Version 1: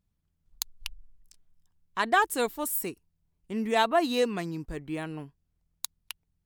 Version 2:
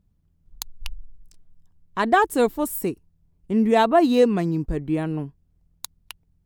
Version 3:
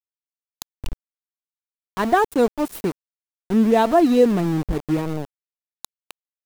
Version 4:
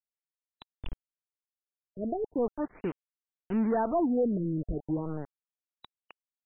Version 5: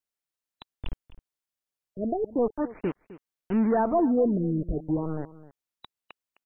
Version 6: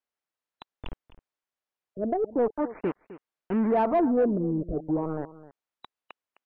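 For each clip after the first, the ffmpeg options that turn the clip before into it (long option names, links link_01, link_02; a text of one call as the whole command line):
ffmpeg -i in.wav -af "tiltshelf=frequency=820:gain=6.5,volume=6dB" out.wav
ffmpeg -i in.wav -af "aeval=exprs='val(0)*gte(abs(val(0)),0.0501)':channel_layout=same,tiltshelf=frequency=820:gain=3.5" out.wav
ffmpeg -i in.wav -af "asoftclip=type=tanh:threshold=-13.5dB,afftfilt=real='re*lt(b*sr/1024,630*pow(4000/630,0.5+0.5*sin(2*PI*0.39*pts/sr)))':imag='im*lt(b*sr/1024,630*pow(4000/630,0.5+0.5*sin(2*PI*0.39*pts/sr)))':win_size=1024:overlap=0.75,volume=-8dB" out.wav
ffmpeg -i in.wav -af "aecho=1:1:259:0.133,volume=4dB" out.wav
ffmpeg -i in.wav -filter_complex "[0:a]asplit=2[link_01][link_02];[link_02]highpass=frequency=720:poles=1,volume=13dB,asoftclip=type=tanh:threshold=-14.5dB[link_03];[link_01][link_03]amix=inputs=2:normalize=0,lowpass=frequency=1100:poles=1,volume=-6dB" out.wav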